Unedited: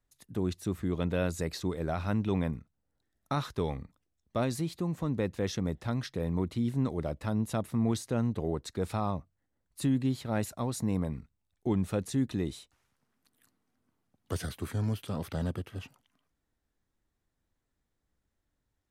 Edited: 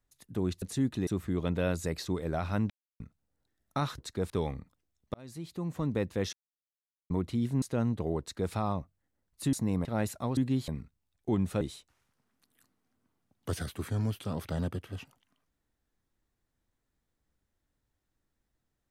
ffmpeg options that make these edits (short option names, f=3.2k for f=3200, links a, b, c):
-filter_complex "[0:a]asplit=16[a][b][c][d][e][f][g][h][i][j][k][l][m][n][o][p];[a]atrim=end=0.622[q];[b]atrim=start=11.988:end=12.442[r];[c]atrim=start=0.618:end=2.25,asetpts=PTS-STARTPTS,afade=t=out:st=1.628:d=0.004:c=hsin[s];[d]atrim=start=2.25:end=2.55,asetpts=PTS-STARTPTS,volume=0[t];[e]atrim=start=2.55:end=3.532,asetpts=PTS-STARTPTS,afade=t=in:d=0.004:c=hsin[u];[f]atrim=start=8.578:end=8.902[v];[g]atrim=start=3.528:end=4.37,asetpts=PTS-STARTPTS,afade=t=out:st=0.838:d=0.004:c=hsin[w];[h]atrim=start=4.37:end=5.56,asetpts=PTS-STARTPTS,afade=t=in:d=0.69,afade=t=out:st=1.186:d=0.004:c=hsin[x];[i]atrim=start=5.56:end=6.33,asetpts=PTS-STARTPTS,volume=0[y];[j]atrim=start=6.33:end=6.852,asetpts=PTS-STARTPTS,afade=t=in:d=0.004:c=hsin[z];[k]atrim=start=7.998:end=9.912[aa];[l]atrim=start=10.738:end=11.062[ab];[m]atrim=start=10.218:end=10.742[ac];[n]atrim=start=9.908:end=10.222[ad];[o]atrim=start=11.058:end=11.992[ae];[p]atrim=start=12.438[af];[q][r]acrossfade=d=0.004:c1=hsin:c2=hsin[ag];[s][t][u]concat=n=3:v=0:a=1[ah];[ag][ah]acrossfade=d=0.004:c1=hsin:c2=hsin[ai];[ai][v]acrossfade=d=0.004:c1=hsin:c2=hsin[aj];[w][x][y][z]concat=n=4:v=0:a=1[ak];[aj][ak]acrossfade=d=0.004:c1=hsin:c2=hsin[al];[al][aa]acrossfade=d=0.004:c1=hsin:c2=hsin[am];[am][ab]acrossfade=d=0.004:c1=hsin:c2=hsin[an];[an][ac]acrossfade=d=0.004:c1=hsin:c2=hsin[ao];[ao][ad]acrossfade=d=0.004:c1=hsin:c2=hsin[ap];[ap][ae]acrossfade=d=0.004:c1=hsin:c2=hsin[aq];[aq][af]acrossfade=d=0.004:c1=hsin:c2=hsin"